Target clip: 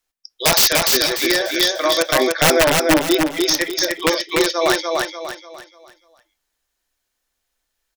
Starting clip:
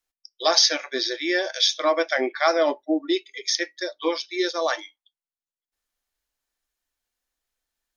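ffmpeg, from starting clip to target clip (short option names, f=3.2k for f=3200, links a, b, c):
-filter_complex "[0:a]asplit=3[a][b][c];[a]afade=t=out:st=1.31:d=0.02[d];[b]acompressor=threshold=-20dB:ratio=10,afade=t=in:st=1.31:d=0.02,afade=t=out:st=2:d=0.02[e];[c]afade=t=in:st=2:d=0.02[f];[d][e][f]amix=inputs=3:normalize=0,aeval=exprs='(mod(4.47*val(0)+1,2)-1)/4.47':c=same,aecho=1:1:295|590|885|1180|1475:0.708|0.262|0.0969|0.0359|0.0133,volume=6dB"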